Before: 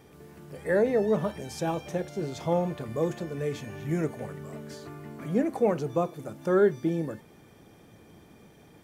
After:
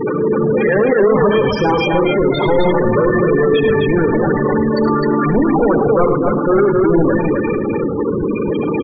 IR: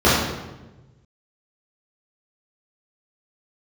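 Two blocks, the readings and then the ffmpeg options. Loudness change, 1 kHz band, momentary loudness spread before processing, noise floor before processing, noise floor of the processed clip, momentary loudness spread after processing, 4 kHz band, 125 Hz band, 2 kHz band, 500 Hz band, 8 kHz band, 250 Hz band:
+14.5 dB, +17.5 dB, 17 LU, -55 dBFS, -19 dBFS, 6 LU, +18.5 dB, +14.0 dB, +18.0 dB, +15.5 dB, no reading, +16.5 dB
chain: -filter_complex "[0:a]aeval=exprs='val(0)+0.5*0.0178*sgn(val(0))':c=same,equalizer=f=640:t=o:w=0.44:g=-11,asplit=2[s0][s1];[1:a]atrim=start_sample=2205,lowpass=3100[s2];[s1][s2]afir=irnorm=-1:irlink=0,volume=0.0126[s3];[s0][s3]amix=inputs=2:normalize=0,asplit=2[s4][s5];[s5]highpass=f=720:p=1,volume=112,asoftclip=type=tanh:threshold=0.316[s6];[s4][s6]amix=inputs=2:normalize=0,lowpass=f=3800:p=1,volume=0.501,afftfilt=real='re*gte(hypot(re,im),0.282)':imag='im*gte(hypot(re,im),0.282)':win_size=1024:overlap=0.75,asubboost=boost=3.5:cutoff=58,aecho=1:1:71|107|257:0.178|0.251|0.631,volume=1.5"

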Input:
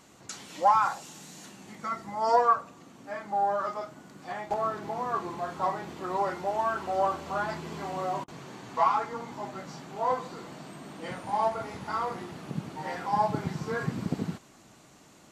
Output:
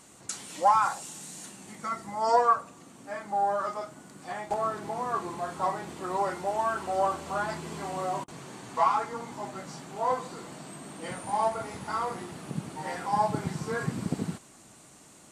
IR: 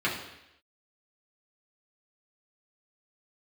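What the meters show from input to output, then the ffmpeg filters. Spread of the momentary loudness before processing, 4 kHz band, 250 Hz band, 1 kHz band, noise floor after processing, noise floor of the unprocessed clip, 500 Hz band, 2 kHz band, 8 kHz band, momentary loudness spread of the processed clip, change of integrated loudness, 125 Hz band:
18 LU, +1.0 dB, 0.0 dB, 0.0 dB, -54 dBFS, -56 dBFS, 0.0 dB, 0.0 dB, +6.5 dB, 16 LU, 0.0 dB, 0.0 dB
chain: -af "equalizer=f=9000:t=o:w=0.52:g=13.5"

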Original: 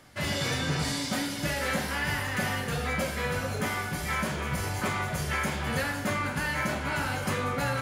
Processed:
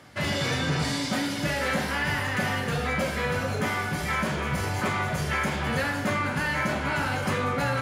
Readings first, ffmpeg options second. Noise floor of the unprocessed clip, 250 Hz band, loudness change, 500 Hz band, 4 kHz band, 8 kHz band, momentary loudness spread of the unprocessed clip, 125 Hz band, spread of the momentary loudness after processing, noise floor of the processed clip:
-34 dBFS, +3.5 dB, +2.5 dB, +3.5 dB, +2.0 dB, -1.0 dB, 2 LU, +2.5 dB, 1 LU, -31 dBFS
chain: -filter_complex "[0:a]highpass=70,highshelf=f=6900:g=-8.5,asplit=2[s0][s1];[s1]alimiter=level_in=1.33:limit=0.0631:level=0:latency=1,volume=0.75,volume=0.794[s2];[s0][s2]amix=inputs=2:normalize=0"

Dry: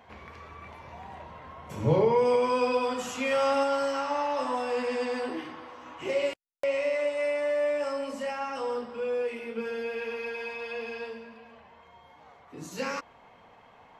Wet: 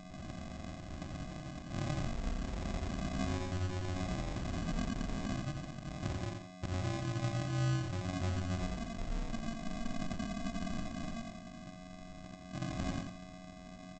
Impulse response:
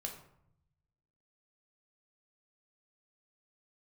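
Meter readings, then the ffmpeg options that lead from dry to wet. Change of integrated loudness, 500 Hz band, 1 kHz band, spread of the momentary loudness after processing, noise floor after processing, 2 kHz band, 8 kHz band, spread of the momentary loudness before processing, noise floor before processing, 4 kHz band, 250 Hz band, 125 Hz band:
-10.5 dB, -19.0 dB, -13.5 dB, 12 LU, -50 dBFS, -11.0 dB, -3.0 dB, 20 LU, -56 dBFS, -6.0 dB, -2.0 dB, +3.5 dB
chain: -af "superequalizer=6b=2:7b=0.501:13b=3.55,acompressor=threshold=0.0224:ratio=16,flanger=delay=18.5:depth=7.1:speed=0.58,aeval=exprs='val(0)+0.00316*sin(2*PI*640*n/s)':c=same,aresample=16000,acrusher=samples=35:mix=1:aa=0.000001,aresample=44100,aecho=1:1:86|172|258|344:0.531|0.165|0.051|0.0158,volume=1.26"

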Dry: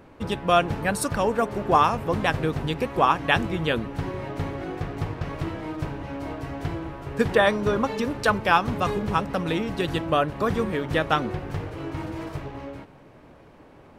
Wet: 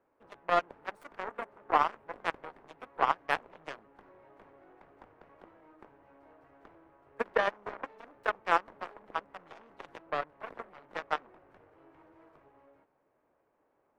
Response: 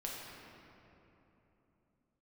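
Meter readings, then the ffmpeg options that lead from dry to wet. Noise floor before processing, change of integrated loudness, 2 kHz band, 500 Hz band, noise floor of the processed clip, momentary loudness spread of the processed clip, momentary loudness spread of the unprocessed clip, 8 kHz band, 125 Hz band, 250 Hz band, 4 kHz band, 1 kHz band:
-50 dBFS, -8.5 dB, -9.5 dB, -13.0 dB, -75 dBFS, 20 LU, 13 LU, under -20 dB, -30.0 dB, -22.5 dB, -15.0 dB, -8.5 dB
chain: -filter_complex "[0:a]aeval=exprs='0.668*(cos(1*acos(clip(val(0)/0.668,-1,1)))-cos(1*PI/2))+0.211*(cos(2*acos(clip(val(0)/0.668,-1,1)))-cos(2*PI/2))+0.0106*(cos(5*acos(clip(val(0)/0.668,-1,1)))-cos(5*PI/2))+0.119*(cos(7*acos(clip(val(0)/0.668,-1,1)))-cos(7*PI/2))':c=same,acrossover=split=340 2100:gain=0.178 1 0.126[s0][s1][s2];[s0][s1][s2]amix=inputs=3:normalize=0,volume=0.562"

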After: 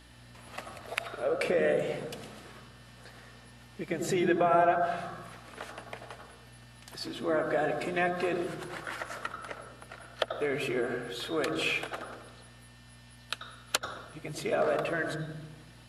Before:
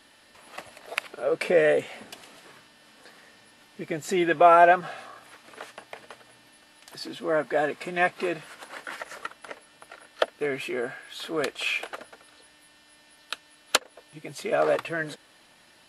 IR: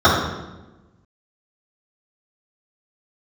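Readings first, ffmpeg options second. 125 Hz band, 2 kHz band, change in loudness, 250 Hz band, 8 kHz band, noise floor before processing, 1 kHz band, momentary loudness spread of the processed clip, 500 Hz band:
+2.5 dB, -5.0 dB, -6.0 dB, -1.0 dB, -4.0 dB, -57 dBFS, -7.0 dB, 21 LU, -5.0 dB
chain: -filter_complex "[0:a]acompressor=threshold=0.0562:ratio=3,aeval=exprs='val(0)+0.00178*(sin(2*PI*60*n/s)+sin(2*PI*2*60*n/s)/2+sin(2*PI*3*60*n/s)/3+sin(2*PI*4*60*n/s)/4+sin(2*PI*5*60*n/s)/5)':c=same,asplit=2[s0][s1];[1:a]atrim=start_sample=2205,lowshelf=f=200:g=10.5,adelay=83[s2];[s1][s2]afir=irnorm=-1:irlink=0,volume=0.0211[s3];[s0][s3]amix=inputs=2:normalize=0,volume=0.841"

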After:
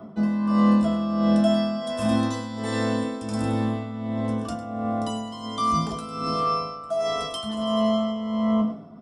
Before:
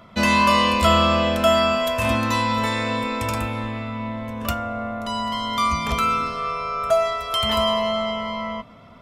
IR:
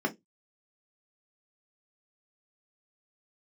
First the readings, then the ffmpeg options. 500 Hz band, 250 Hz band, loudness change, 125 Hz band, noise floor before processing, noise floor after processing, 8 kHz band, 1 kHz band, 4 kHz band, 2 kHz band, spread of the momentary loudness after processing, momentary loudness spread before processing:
-4.5 dB, +4.0 dB, -3.5 dB, -1.5 dB, -45 dBFS, -38 dBFS, -7.0 dB, -7.5 dB, -10.5 dB, -13.0 dB, 10 LU, 12 LU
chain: -filter_complex "[0:a]aresample=22050,aresample=44100,equalizer=f=2300:w=1.2:g=-13,areverse,acompressor=threshold=0.0355:ratio=6,areverse,lowshelf=f=290:g=6,aecho=1:1:102:0.335[s0];[1:a]atrim=start_sample=2205[s1];[s0][s1]afir=irnorm=-1:irlink=0,acrossover=split=260|3300[s2][s3][s4];[s4]dynaudnorm=f=260:g=9:m=5.62[s5];[s2][s3][s5]amix=inputs=3:normalize=0,tremolo=f=1.4:d=0.66,volume=0.708"

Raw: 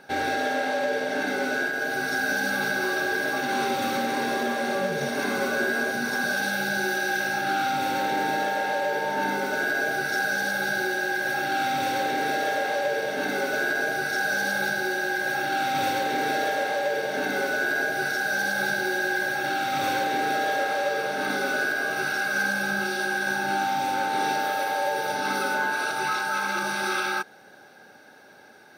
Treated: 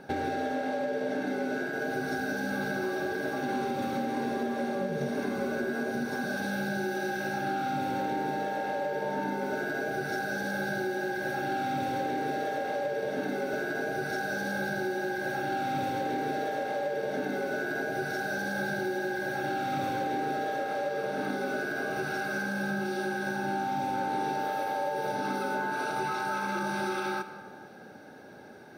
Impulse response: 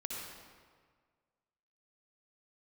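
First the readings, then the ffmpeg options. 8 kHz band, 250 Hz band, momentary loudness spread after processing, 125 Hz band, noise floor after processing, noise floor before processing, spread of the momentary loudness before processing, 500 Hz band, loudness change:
-11.5 dB, -0.5 dB, 1 LU, +1.5 dB, -45 dBFS, -50 dBFS, 2 LU, -3.0 dB, -6.0 dB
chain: -filter_complex "[0:a]tiltshelf=f=670:g=7,acompressor=threshold=0.0282:ratio=6,asplit=2[s0][s1];[1:a]atrim=start_sample=2205[s2];[s1][s2]afir=irnorm=-1:irlink=0,volume=0.398[s3];[s0][s3]amix=inputs=2:normalize=0"

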